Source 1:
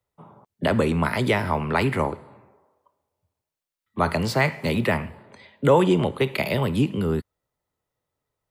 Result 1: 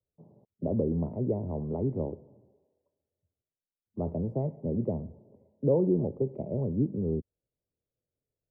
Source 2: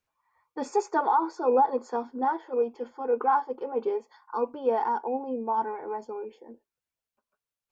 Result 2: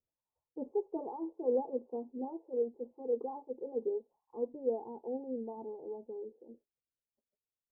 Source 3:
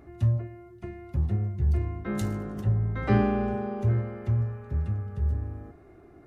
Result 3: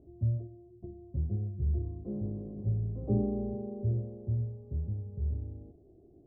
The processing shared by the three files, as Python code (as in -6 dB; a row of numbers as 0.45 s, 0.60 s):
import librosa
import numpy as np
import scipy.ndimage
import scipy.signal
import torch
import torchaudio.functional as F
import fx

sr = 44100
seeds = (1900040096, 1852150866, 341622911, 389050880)

y = scipy.signal.sosfilt(scipy.signal.cheby2(4, 50, 1500.0, 'lowpass', fs=sr, output='sos'), x)
y = F.gain(torch.from_numpy(y), -6.0).numpy()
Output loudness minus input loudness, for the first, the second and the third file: -8.0 LU, -10.0 LU, -6.0 LU